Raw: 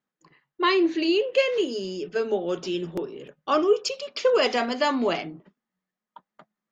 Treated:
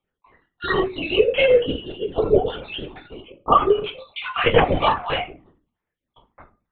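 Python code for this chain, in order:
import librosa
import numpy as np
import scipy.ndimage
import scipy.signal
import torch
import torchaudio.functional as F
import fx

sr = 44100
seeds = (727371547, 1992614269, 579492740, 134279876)

y = fx.spec_dropout(x, sr, seeds[0], share_pct=55)
y = fx.highpass(y, sr, hz=320.0, slope=6)
y = y + 0.45 * np.pad(y, (int(4.2 * sr / 1000.0), 0))[:len(y)]
y = fx.rider(y, sr, range_db=4, speed_s=2.0)
y = fx.room_shoebox(y, sr, seeds[1], volume_m3=140.0, walls='furnished', distance_m=1.7)
y = fx.lpc_vocoder(y, sr, seeds[2], excitation='whisper', order=16)
y = F.gain(torch.from_numpy(y), 3.5).numpy()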